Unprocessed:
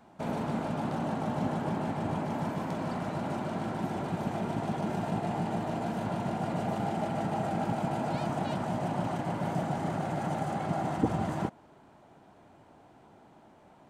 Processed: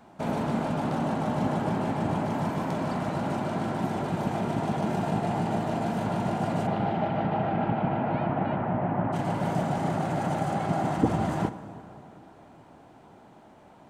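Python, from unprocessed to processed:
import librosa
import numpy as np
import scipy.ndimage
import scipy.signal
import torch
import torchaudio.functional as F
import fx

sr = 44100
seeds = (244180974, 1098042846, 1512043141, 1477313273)

y = fx.lowpass(x, sr, hz=fx.line((6.66, 4100.0), (9.12, 2000.0)), slope=24, at=(6.66, 9.12), fade=0.02)
y = fx.rev_plate(y, sr, seeds[0], rt60_s=3.1, hf_ratio=0.6, predelay_ms=0, drr_db=12.0)
y = F.gain(torch.from_numpy(y), 4.0).numpy()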